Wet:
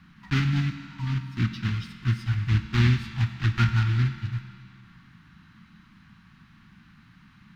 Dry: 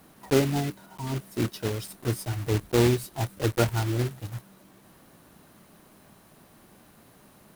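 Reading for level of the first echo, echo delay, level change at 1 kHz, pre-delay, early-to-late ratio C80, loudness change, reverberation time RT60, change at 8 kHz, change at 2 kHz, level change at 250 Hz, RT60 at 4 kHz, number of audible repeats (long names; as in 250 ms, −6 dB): no echo audible, no echo audible, −2.5 dB, 4 ms, 9.5 dB, +1.5 dB, 2.3 s, below −10 dB, +4.0 dB, −2.0 dB, 2.0 s, no echo audible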